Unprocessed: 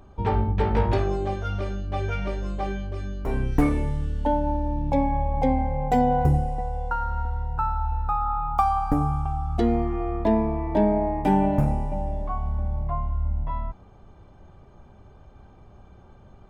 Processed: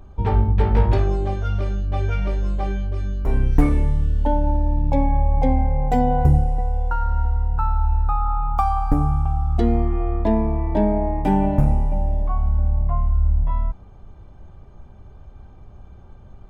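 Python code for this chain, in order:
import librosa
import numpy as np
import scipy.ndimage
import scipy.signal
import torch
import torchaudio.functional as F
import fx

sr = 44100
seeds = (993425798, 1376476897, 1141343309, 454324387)

y = fx.low_shelf(x, sr, hz=100.0, db=10.5)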